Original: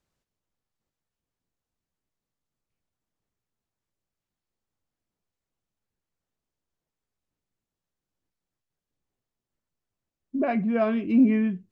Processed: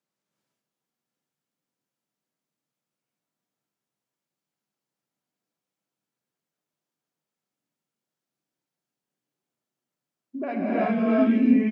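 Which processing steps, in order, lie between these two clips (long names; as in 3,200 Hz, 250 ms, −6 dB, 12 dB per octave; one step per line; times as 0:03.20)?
high-pass filter 150 Hz 24 dB per octave
far-end echo of a speakerphone 190 ms, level −19 dB
reverb whose tail is shaped and stops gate 410 ms rising, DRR −7 dB
level −6 dB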